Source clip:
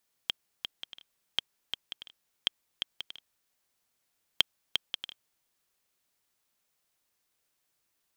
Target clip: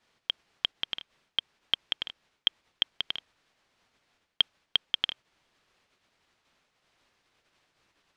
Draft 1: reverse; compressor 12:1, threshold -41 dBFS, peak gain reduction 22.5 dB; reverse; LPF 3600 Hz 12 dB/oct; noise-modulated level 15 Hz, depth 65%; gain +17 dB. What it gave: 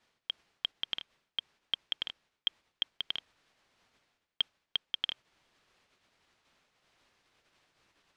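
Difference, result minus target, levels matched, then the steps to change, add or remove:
compressor: peak gain reduction +8 dB
change: compressor 12:1, threshold -32.5 dBFS, peak gain reduction 15 dB

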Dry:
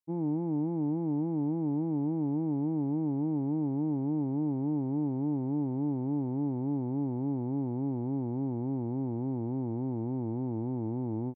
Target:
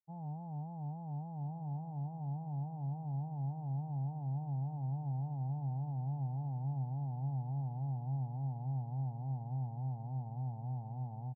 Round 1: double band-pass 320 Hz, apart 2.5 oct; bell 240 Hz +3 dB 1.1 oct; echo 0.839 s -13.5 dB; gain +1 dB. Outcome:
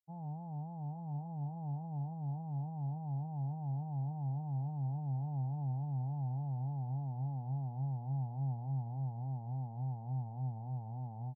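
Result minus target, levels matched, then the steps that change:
echo 0.479 s early
change: echo 1.318 s -13.5 dB

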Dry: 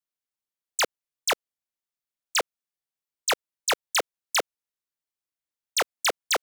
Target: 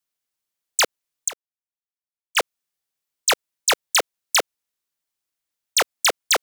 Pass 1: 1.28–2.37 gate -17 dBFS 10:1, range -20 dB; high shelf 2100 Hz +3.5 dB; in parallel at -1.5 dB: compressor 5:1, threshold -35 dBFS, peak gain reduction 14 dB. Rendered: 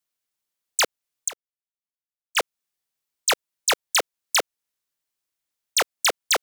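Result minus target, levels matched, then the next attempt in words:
compressor: peak gain reduction +9 dB
1.28–2.37 gate -17 dBFS 10:1, range -20 dB; high shelf 2100 Hz +3.5 dB; in parallel at -1.5 dB: compressor 5:1, threshold -23.5 dBFS, peak gain reduction 4.5 dB

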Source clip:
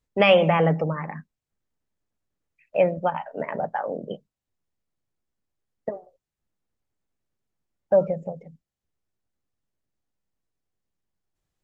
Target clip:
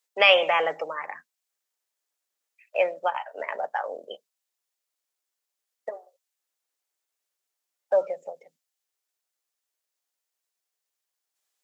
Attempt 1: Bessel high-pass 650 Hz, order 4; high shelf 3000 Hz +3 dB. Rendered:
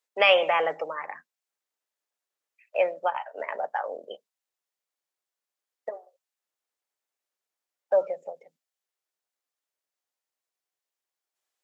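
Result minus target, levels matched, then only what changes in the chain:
8000 Hz band -4.5 dB
change: high shelf 3000 Hz +10.5 dB

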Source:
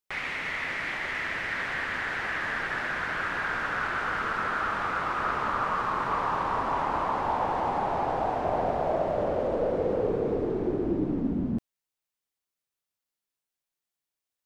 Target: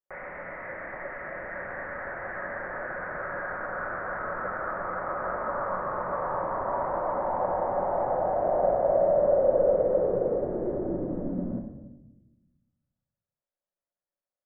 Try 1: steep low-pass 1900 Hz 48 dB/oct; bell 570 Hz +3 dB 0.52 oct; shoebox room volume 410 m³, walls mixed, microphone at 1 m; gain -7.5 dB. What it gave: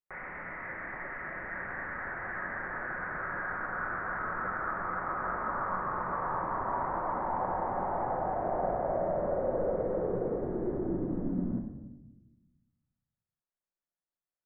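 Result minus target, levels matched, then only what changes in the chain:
500 Hz band -3.5 dB
change: bell 570 Hz +14.5 dB 0.52 oct

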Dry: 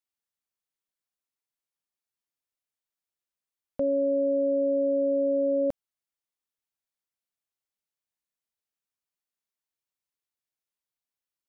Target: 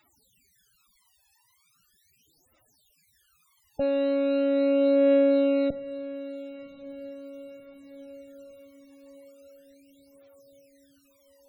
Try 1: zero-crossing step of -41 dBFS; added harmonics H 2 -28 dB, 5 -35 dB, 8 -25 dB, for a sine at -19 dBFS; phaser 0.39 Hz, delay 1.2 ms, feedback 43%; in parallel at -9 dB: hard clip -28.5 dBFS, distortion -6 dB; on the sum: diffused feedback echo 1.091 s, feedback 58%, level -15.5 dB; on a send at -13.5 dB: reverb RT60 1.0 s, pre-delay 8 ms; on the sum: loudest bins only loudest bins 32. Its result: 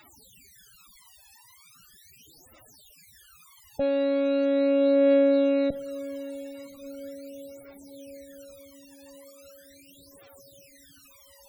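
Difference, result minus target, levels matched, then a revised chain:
zero-crossing step: distortion +12 dB
zero-crossing step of -53 dBFS; added harmonics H 2 -28 dB, 5 -35 dB, 8 -25 dB, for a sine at -19 dBFS; phaser 0.39 Hz, delay 1.2 ms, feedback 43%; in parallel at -9 dB: hard clip -28.5 dBFS, distortion -6 dB; on the sum: diffused feedback echo 1.091 s, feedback 58%, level -15.5 dB; on a send at -13.5 dB: reverb RT60 1.0 s, pre-delay 8 ms; on the sum: loudest bins only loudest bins 32

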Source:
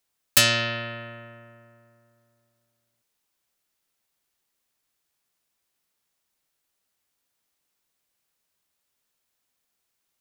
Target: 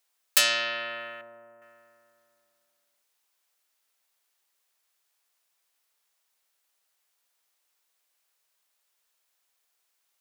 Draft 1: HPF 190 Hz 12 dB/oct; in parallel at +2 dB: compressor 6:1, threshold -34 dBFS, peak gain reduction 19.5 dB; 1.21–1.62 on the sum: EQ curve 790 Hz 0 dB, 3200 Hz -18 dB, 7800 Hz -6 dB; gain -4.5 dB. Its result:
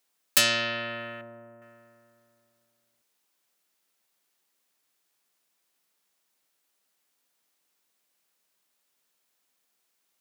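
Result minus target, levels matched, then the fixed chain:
250 Hz band +11.0 dB
HPF 540 Hz 12 dB/oct; in parallel at +2 dB: compressor 6:1, threshold -34 dBFS, peak gain reduction 19.5 dB; 1.21–1.62 on the sum: EQ curve 790 Hz 0 dB, 3200 Hz -18 dB, 7800 Hz -6 dB; gain -4.5 dB

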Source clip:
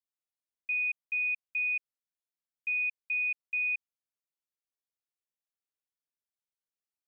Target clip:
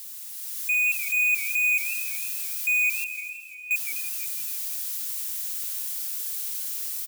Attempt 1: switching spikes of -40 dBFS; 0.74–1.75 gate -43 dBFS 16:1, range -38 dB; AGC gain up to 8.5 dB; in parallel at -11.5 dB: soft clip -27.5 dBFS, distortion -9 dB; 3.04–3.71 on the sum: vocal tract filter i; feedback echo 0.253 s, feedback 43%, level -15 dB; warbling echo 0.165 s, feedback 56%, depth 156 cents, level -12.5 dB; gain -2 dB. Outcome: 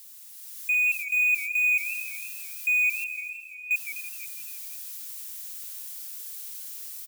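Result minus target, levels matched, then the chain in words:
switching spikes: distortion -8 dB
switching spikes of -32 dBFS; 0.74–1.75 gate -43 dBFS 16:1, range -38 dB; AGC gain up to 8.5 dB; in parallel at -11.5 dB: soft clip -27.5 dBFS, distortion -9 dB; 3.04–3.71 on the sum: vocal tract filter i; feedback echo 0.253 s, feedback 43%, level -15 dB; warbling echo 0.165 s, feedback 56%, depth 156 cents, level -12.5 dB; gain -2 dB

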